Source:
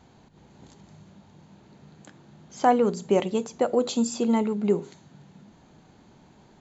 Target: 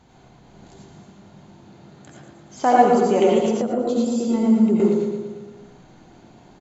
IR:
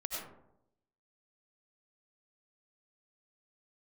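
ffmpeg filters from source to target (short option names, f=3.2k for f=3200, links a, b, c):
-filter_complex "[0:a]aecho=1:1:115|230|345|460|575|690|805:0.398|0.235|0.139|0.0818|0.0482|0.0285|0.0168[a];[1:a]atrim=start_sample=2205,asetrate=48510,aresample=44100[b];[a][b]afir=irnorm=-1:irlink=0,asettb=1/sr,asplit=3[c][d][e];[c]atrim=end=3.614[f];[d]atrim=start=3.61:end=4.8,asetpts=PTS-STARTPTS,afade=t=in:d=0.004:c=qsin,afade=t=out:st=1.186:d=0.004:c=qsin,acrossover=split=420[g][h];[h]acompressor=threshold=-43dB:ratio=2[i];[g][i]amix=inputs=2:normalize=0[j];[e]atrim=start=4.796[k];[f][j]acrossfade=d=0.004:c1=hsin:c2=qsin[l];[l][k]acrossfade=d=0.004:c1=qsin:c2=hsin,volume=4.5dB"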